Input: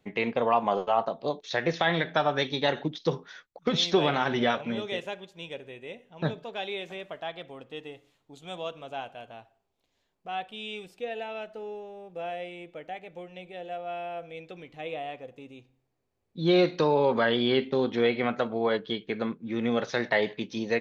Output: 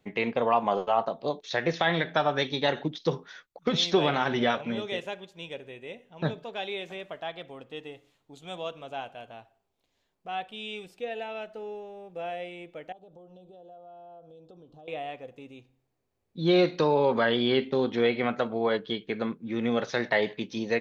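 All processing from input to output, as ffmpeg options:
ffmpeg -i in.wav -filter_complex "[0:a]asettb=1/sr,asplit=3[link_01][link_02][link_03];[link_01]atrim=end=12.924[link_04];[link_02]atrim=start=12.92:end=14.88,asetpts=PTS-STARTPTS,afade=type=in:duration=0.004:curve=qsin,afade=type=out:start_time=1.956:duration=0.004:curve=qsin,highshelf=frequency=4200:gain=-11,acompressor=threshold=-48dB:ratio=4:attack=3.2:release=140:knee=1:detection=peak,asuperstop=centerf=2100:order=4:qfactor=0.81[link_05];[link_03]atrim=start=14.876[link_06];[link_04][link_05]acrossfade=duration=0.004:curve1=hsin:curve2=qsin[link_07];[link_07][link_06]acrossfade=duration=0.004:curve1=qsin:curve2=hsin" out.wav

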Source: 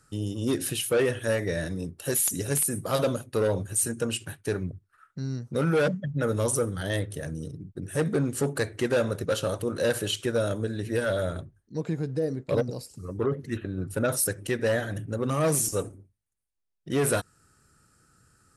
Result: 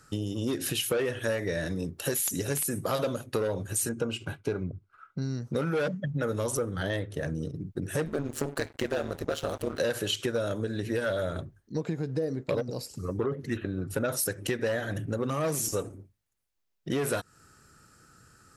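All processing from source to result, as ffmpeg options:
ffmpeg -i in.wav -filter_complex "[0:a]asettb=1/sr,asplit=3[link_01][link_02][link_03];[link_01]atrim=end=3.894[link_04];[link_02]atrim=start=3.89:end=5.22,asetpts=PTS-STARTPTS,afade=type=in:duration=0.004:curve=qsin,afade=type=out:start_time=1.326:duration=0.004:curve=qsin,asuperstop=centerf=1800:order=8:qfactor=6.9,aemphasis=mode=reproduction:type=75kf[link_05];[link_03]atrim=start=5.216[link_06];[link_04][link_05]acrossfade=duration=0.004:curve1=hsin:curve2=qsin[link_07];[link_07][link_06]acrossfade=duration=0.004:curve1=qsin:curve2=hsin,asettb=1/sr,asplit=3[link_08][link_09][link_10];[link_08]atrim=end=6.574[link_11];[link_09]atrim=start=6.57:end=7.55,asetpts=PTS-STARTPTS,afade=type=in:duration=0.004:curve=qsin,afade=type=out:start_time=0.976:duration=0.004:curve=qsin,agate=range=-33dB:threshold=-36dB:ratio=3:release=100:detection=peak,highshelf=frequency=5400:gain=-10[link_12];[link_10]atrim=start=7.546[link_13];[link_11][link_12]acrossfade=duration=0.004:curve1=hsin:curve2=qsin[link_14];[link_14][link_13]acrossfade=duration=0.004:curve1=qsin:curve2=hsin,asettb=1/sr,asplit=3[link_15][link_16][link_17];[link_15]atrim=end=8.054[link_18];[link_16]atrim=start=8.05:end=9.8,asetpts=PTS-STARTPTS,afade=type=in:duration=0.004:curve=qsin,afade=type=out:start_time=1.746:duration=0.004:curve=qsin,aeval=exprs='sgn(val(0))*max(abs(val(0))-0.00631,0)':channel_layout=same,tremolo=f=150:d=0.857[link_19];[link_17]atrim=start=9.796[link_20];[link_18][link_19]acrossfade=duration=0.004:curve1=hsin:curve2=qsin[link_21];[link_21][link_20]acrossfade=duration=0.004:curve1=qsin:curve2=hsin,equalizer=frequency=9300:width=3.2:gain=-8.5,acompressor=threshold=-32dB:ratio=6,lowshelf=frequency=180:gain=-4.5,volume=6.5dB" out.wav

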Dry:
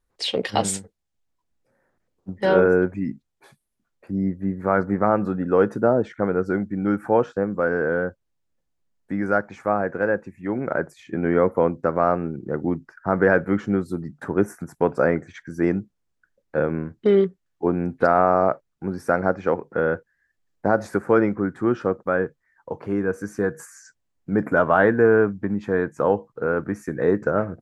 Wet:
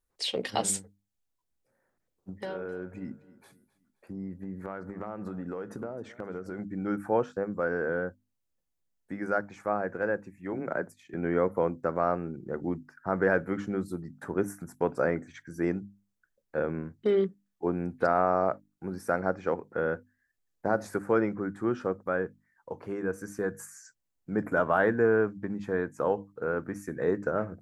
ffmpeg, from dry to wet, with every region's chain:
ffmpeg -i in.wav -filter_complex "[0:a]asettb=1/sr,asplit=3[link_01][link_02][link_03];[link_01]atrim=end=2.364[link_04];[link_02]atrim=start=2.36:end=6.59,asetpts=PTS-STARTPTS,afade=type=in:duration=0.004:curve=qsin,afade=type=out:start_time=4.226:duration=0.004:curve=qsin,acompressor=threshold=-24dB:ratio=16:attack=3.2:release=140:knee=1:detection=peak,aecho=1:1:262|524|786:0.112|0.0438|0.0171,atrim=end_sample=186543[link_05];[link_03]atrim=start=6.586[link_06];[link_04][link_05]acrossfade=duration=0.004:curve1=hsin:curve2=qsin[link_07];[link_07][link_06]acrossfade=duration=0.004:curve1=qsin:curve2=hsin,asettb=1/sr,asplit=3[link_08][link_09][link_10];[link_08]atrim=end=10.524[link_11];[link_09]atrim=start=10.52:end=11.14,asetpts=PTS-STARTPTS,afade=type=in:duration=0.004:curve=qsin,afade=type=out:start_time=0.616:duration=0.004:curve=qsin,agate=range=-33dB:threshold=-46dB:ratio=3:release=100:detection=peak,afreqshift=15[link_12];[link_10]atrim=start=11.136[link_13];[link_11][link_12]acrossfade=duration=0.004:curve1=hsin:curve2=qsin[link_14];[link_14][link_13]acrossfade=duration=0.004:curve1=qsin:curve2=hsin,highshelf=frequency=6900:gain=9.5,bandreject=frequency=50:width_type=h:width=6,bandreject=frequency=100:width_type=h:width=6,bandreject=frequency=150:width_type=h:width=6,bandreject=frequency=200:width_type=h:width=6,bandreject=frequency=250:width_type=h:width=6,bandreject=frequency=300:width_type=h:width=6,volume=-7.5dB" out.wav

